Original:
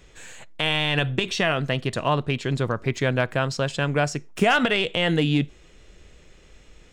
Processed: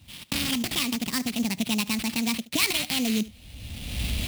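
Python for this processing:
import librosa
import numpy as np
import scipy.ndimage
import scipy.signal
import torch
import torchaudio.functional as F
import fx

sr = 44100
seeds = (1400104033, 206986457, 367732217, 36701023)

p1 = fx.speed_glide(x, sr, from_pct=189, to_pct=135)
p2 = fx.recorder_agc(p1, sr, target_db=-13.5, rise_db_per_s=31.0, max_gain_db=30)
p3 = p2 + fx.echo_single(p2, sr, ms=74, db=-19.0, dry=0)
p4 = fx.sample_hold(p3, sr, seeds[0], rate_hz=6600.0, jitter_pct=20)
p5 = scipy.signal.sosfilt(scipy.signal.butter(2, 49.0, 'highpass', fs=sr, output='sos'), p4)
y = fx.band_shelf(p5, sr, hz=780.0, db=-14.5, octaves=2.7)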